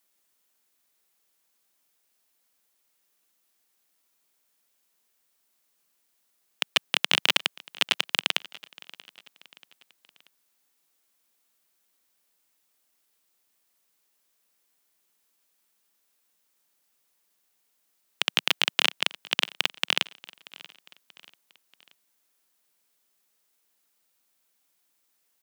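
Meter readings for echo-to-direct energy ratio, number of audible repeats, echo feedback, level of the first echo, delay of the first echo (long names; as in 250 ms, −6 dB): −20.5 dB, 3, 46%, −21.5 dB, 634 ms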